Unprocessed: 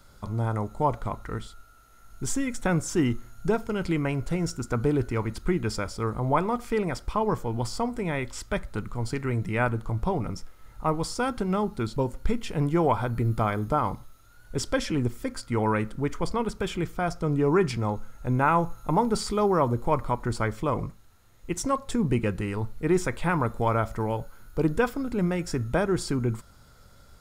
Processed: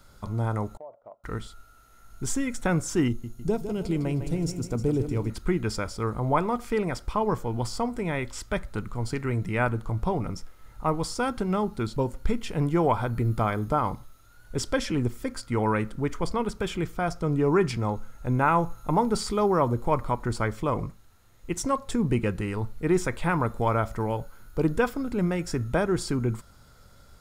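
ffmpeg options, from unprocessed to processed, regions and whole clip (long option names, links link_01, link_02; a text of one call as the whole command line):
ffmpeg -i in.wav -filter_complex "[0:a]asettb=1/sr,asplit=3[link_01][link_02][link_03];[link_01]atrim=end=0.774[link_04];[link_02]atrim=start=0.77:end=1.24,asetpts=PTS-STARTPTS,afade=type=in:duration=0.004:curve=qsin,afade=type=out:start_time=0.466:duration=0.004:curve=qsin,agate=range=-9dB:threshold=-31dB:ratio=16:release=100:detection=peak,bandpass=frequency=610:width_type=q:width=6.9,acompressor=threshold=-40dB:ratio=4:attack=3.2:release=140:knee=1:detection=peak[link_05];[link_03]atrim=start=1.236[link_06];[link_04][link_05]acrossfade=duration=0.004:curve1=hsin:curve2=qsin[link_07];[link_07][link_06]acrossfade=duration=0.004:curve1=qsin:curve2=hsin,asettb=1/sr,asplit=3[link_08][link_09][link_10];[link_08]atrim=end=3.084[link_11];[link_09]atrim=start=3.08:end=5.3,asetpts=PTS-STARTPTS,afade=type=in:duration=0.004:curve=qsin,afade=type=out:start_time=2.216:duration=0.004:curve=qsin,equalizer=frequency=1500:width_type=o:width=1.6:gain=-13,aecho=1:1:155|310|465|620|775|930:0.335|0.178|0.0941|0.0499|0.0264|0.014,atrim=end_sample=97902[link_12];[link_10]atrim=start=5.296[link_13];[link_11][link_12]acrossfade=duration=0.004:curve1=hsin:curve2=qsin[link_14];[link_14][link_13]acrossfade=duration=0.004:curve1=qsin:curve2=hsin" out.wav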